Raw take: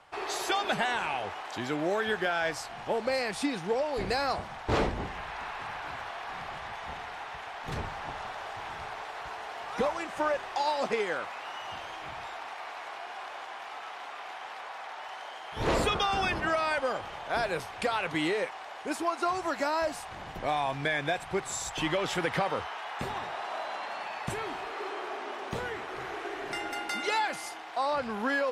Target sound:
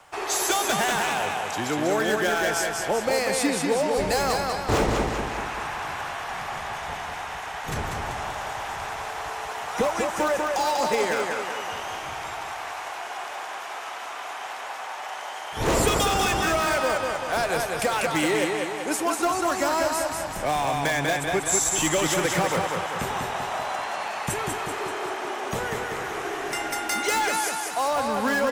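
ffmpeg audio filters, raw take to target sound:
-filter_complex "[0:a]aecho=1:1:193|386|579|772|965|1158|1351:0.631|0.334|0.177|0.0939|0.0498|0.0264|0.014,acrossover=split=290|490|6900[s0][s1][s2][s3];[s2]asoftclip=type=hard:threshold=0.0473[s4];[s0][s1][s4][s3]amix=inputs=4:normalize=0,aexciter=amount=2.9:drive=5.4:freq=5900,volume=1.78"

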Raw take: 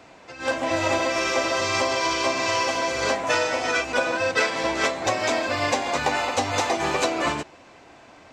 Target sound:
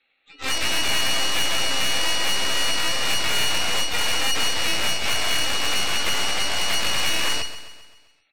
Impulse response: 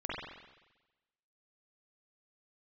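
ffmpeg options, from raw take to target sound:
-filter_complex "[0:a]asuperstop=centerf=1900:order=12:qfactor=6.6,equalizer=f=1100:t=o:w=2.3:g=-4,acrossover=split=280|920[s0][s1][s2];[s0]acompressor=threshold=0.00316:ratio=12[s3];[s3][s1][s2]amix=inputs=3:normalize=0,lowshelf=f=160:g=2.5,aeval=exprs='0.299*(cos(1*acos(clip(val(0)/0.299,-1,1)))-cos(1*PI/2))+0.0188*(cos(3*acos(clip(val(0)/0.299,-1,1)))-cos(3*PI/2))+0.00188*(cos(4*acos(clip(val(0)/0.299,-1,1)))-cos(4*PI/2))+0.00335*(cos(7*acos(clip(val(0)/0.299,-1,1)))-cos(7*PI/2))+0.0944*(cos(8*acos(clip(val(0)/0.299,-1,1)))-cos(8*PI/2))':c=same,afftdn=nr=16:nf=-36,alimiter=limit=0.168:level=0:latency=1:release=103,lowpass=f=2500:t=q:w=0.5098,lowpass=f=2500:t=q:w=0.6013,lowpass=f=2500:t=q:w=0.9,lowpass=f=2500:t=q:w=2.563,afreqshift=-2900,aeval=exprs='0.188*(cos(1*acos(clip(val(0)/0.188,-1,1)))-cos(1*PI/2))+0.0473*(cos(8*acos(clip(val(0)/0.188,-1,1)))-cos(8*PI/2))':c=same,asplit=2[s4][s5];[s5]asetrate=66075,aresample=44100,atempo=0.66742,volume=0.501[s6];[s4][s6]amix=inputs=2:normalize=0,asplit=2[s7][s8];[s8]aecho=0:1:131|262|393|524|655|786:0.237|0.128|0.0691|0.0373|0.0202|0.0109[s9];[s7][s9]amix=inputs=2:normalize=0"

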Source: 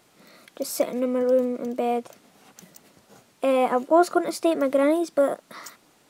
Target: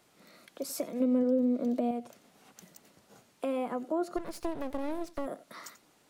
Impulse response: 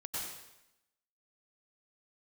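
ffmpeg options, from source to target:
-filter_complex "[0:a]asettb=1/sr,asplit=3[s0][s1][s2];[s0]atrim=end=1.004[s3];[s1]atrim=start=1:end=1.91,asetpts=PTS-STARTPTS,afade=t=in:d=0.004:c=qsin,afade=t=out:st=0.906:d=0.004:c=qsin,equalizer=f=250:t=o:w=0.67:g=8,equalizer=f=630:t=o:w=0.67:g=8,equalizer=f=4000:t=o:w=0.67:g=7[s4];[s2]atrim=start=1.906[s5];[s3][s4]acrossfade=d=0.004:c1=hsin:c2=qsin[s6];[s6][s5]acrossfade=d=0.004:c1=qsin:c2=hsin[s7];[1:a]atrim=start_sample=2205,atrim=end_sample=3969[s8];[s7][s8]afir=irnorm=-1:irlink=0,acrossover=split=330[s9][s10];[s10]acompressor=threshold=0.02:ratio=6[s11];[s9][s11]amix=inputs=2:normalize=0,asplit=3[s12][s13][s14];[s12]afade=t=out:st=4.16:d=0.02[s15];[s13]aeval=exprs='max(val(0),0)':c=same,afade=t=in:st=4.16:d=0.02,afade=t=out:st=5.25:d=0.02[s16];[s14]afade=t=in:st=5.25:d=0.02[s17];[s15][s16][s17]amix=inputs=3:normalize=0"

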